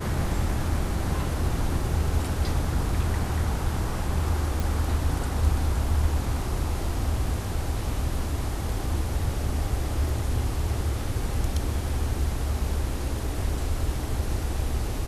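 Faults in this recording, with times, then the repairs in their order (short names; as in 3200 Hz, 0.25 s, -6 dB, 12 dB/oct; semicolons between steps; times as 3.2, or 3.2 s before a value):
4.6 pop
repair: de-click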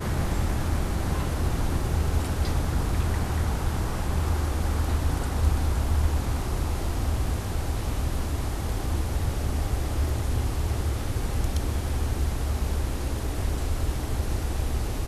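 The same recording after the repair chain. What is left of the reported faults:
none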